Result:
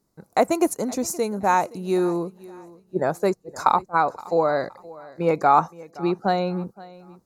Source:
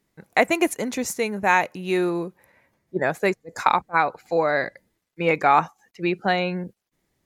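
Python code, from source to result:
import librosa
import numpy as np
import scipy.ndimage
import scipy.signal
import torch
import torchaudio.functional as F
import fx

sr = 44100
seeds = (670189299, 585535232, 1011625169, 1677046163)

p1 = fx.band_shelf(x, sr, hz=2400.0, db=-13.0, octaves=1.3)
p2 = p1 + fx.echo_feedback(p1, sr, ms=520, feedback_pct=34, wet_db=-20.5, dry=0)
y = p2 * 10.0 ** (1.0 / 20.0)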